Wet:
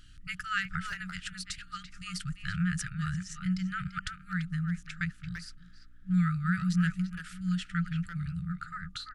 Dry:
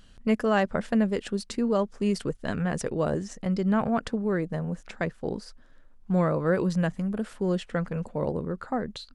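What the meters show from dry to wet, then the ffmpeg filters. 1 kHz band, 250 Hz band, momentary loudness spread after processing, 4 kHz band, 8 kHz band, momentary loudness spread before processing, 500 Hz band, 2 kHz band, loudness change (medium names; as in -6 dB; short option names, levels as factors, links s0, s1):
-7.5 dB, -6.0 dB, 12 LU, +0.5 dB, 0.0 dB, 8 LU, under -40 dB, +0.5 dB, -5.5 dB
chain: -filter_complex "[0:a]afftfilt=real='re*(1-between(b*sr/4096,190,1200))':imag='im*(1-between(b*sr/4096,190,1200))':win_size=4096:overlap=0.75,asplit=2[s0][s1];[s1]adelay=340,highpass=300,lowpass=3400,asoftclip=type=hard:threshold=0.0422,volume=0.447[s2];[s0][s2]amix=inputs=2:normalize=0,aeval=exprs='val(0)+0.000794*(sin(2*PI*60*n/s)+sin(2*PI*2*60*n/s)/2+sin(2*PI*3*60*n/s)/3+sin(2*PI*4*60*n/s)/4+sin(2*PI*5*60*n/s)/5)':c=same"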